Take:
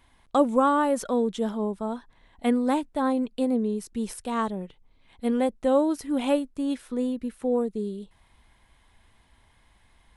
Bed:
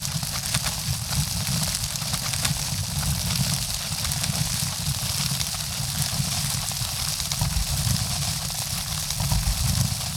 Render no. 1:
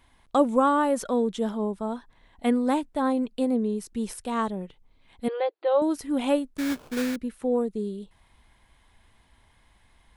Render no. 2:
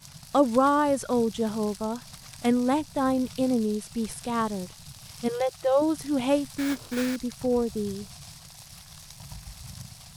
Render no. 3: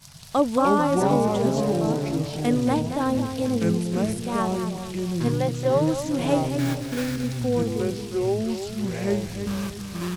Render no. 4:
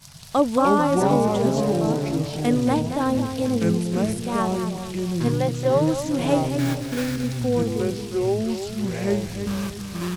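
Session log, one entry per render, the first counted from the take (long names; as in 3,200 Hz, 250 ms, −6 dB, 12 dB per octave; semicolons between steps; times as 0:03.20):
0:05.28–0:05.82: linear-phase brick-wall band-pass 310–4,800 Hz; 0:06.57–0:07.16: sample-rate reduction 2,000 Hz, jitter 20%
mix in bed −19 dB
on a send: repeating echo 225 ms, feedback 41%, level −9 dB; on the sum: delay with pitch and tempo change per echo 156 ms, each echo −6 semitones, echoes 2
level +1.5 dB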